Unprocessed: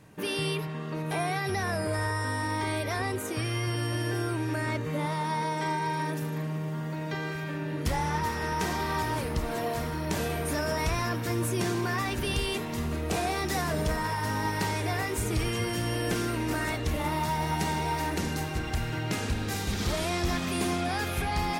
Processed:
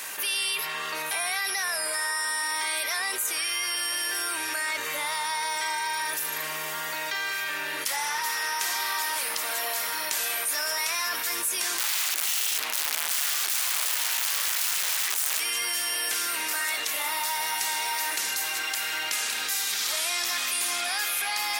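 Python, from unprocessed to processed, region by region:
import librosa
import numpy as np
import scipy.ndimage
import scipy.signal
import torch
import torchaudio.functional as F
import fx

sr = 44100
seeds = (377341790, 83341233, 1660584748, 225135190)

y = fx.chain(x, sr, fx.high_shelf(hz=7900.0, db=-3.5),
    fx.overflow_wrap(gain_db=26.0),
    fx.doppler_dist(depth_ms=0.38), at=(11.78, 15.4))
y = scipy.signal.sosfilt(scipy.signal.bessel(2, 1800.0, 'highpass', norm='mag', fs=sr, output='sos'), y)
y = fx.high_shelf(y, sr, hz=8600.0, db=10.5)
y = fx.env_flatten(y, sr, amount_pct=70)
y = y * 10.0 ** (1.5 / 20.0)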